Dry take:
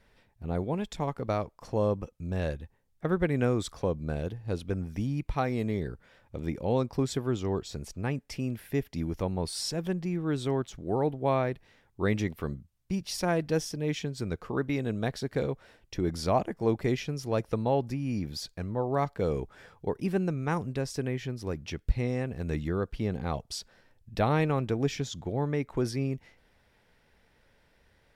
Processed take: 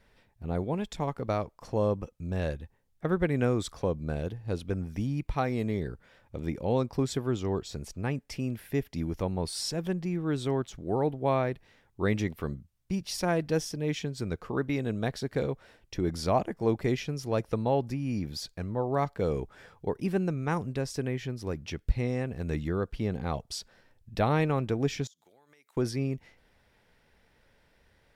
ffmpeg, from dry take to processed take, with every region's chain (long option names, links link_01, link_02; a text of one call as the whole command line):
ffmpeg -i in.wav -filter_complex "[0:a]asettb=1/sr,asplit=3[link_01][link_02][link_03];[link_01]atrim=end=25.074[link_04];[link_02]atrim=start=25.07:end=25.77,asetpts=PTS-STARTPTS,afade=type=in:duration=0.004:curve=qsin,afade=type=out:start_time=0.696:duration=0.004:curve=qsin,highpass=120,aderivative,acompressor=threshold=-56dB:ratio=16:attack=3.2:release=140:knee=1:detection=peak[link_05];[link_03]atrim=start=25.766[link_06];[link_04][link_05]acrossfade=duration=0.004:curve1=hsin:curve2=qsin[link_07];[link_07][link_06]acrossfade=duration=0.004:curve1=qsin:curve2=hsin" out.wav